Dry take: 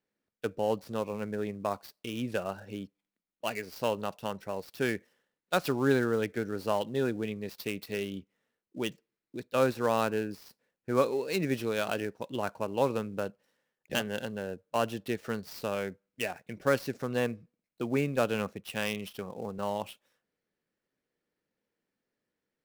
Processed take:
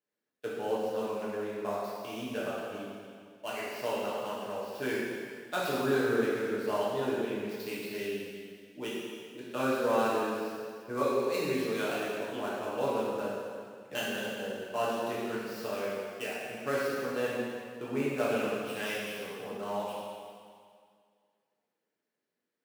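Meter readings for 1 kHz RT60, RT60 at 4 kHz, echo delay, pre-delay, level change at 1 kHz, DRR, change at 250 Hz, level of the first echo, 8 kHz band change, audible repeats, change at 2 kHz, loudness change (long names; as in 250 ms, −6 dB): 2.1 s, 2.0 s, no echo audible, 3 ms, 0.0 dB, −8.0 dB, −2.0 dB, no echo audible, −0.5 dB, no echo audible, 0.0 dB, −1.0 dB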